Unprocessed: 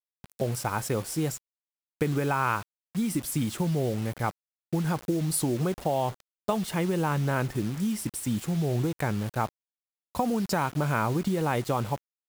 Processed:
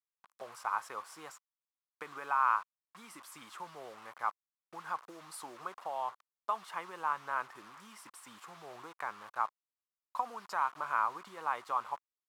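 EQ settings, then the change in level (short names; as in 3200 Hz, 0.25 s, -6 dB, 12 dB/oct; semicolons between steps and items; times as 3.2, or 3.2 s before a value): band-pass 1100 Hz, Q 4.3; tilt +3.5 dB/oct; +2.5 dB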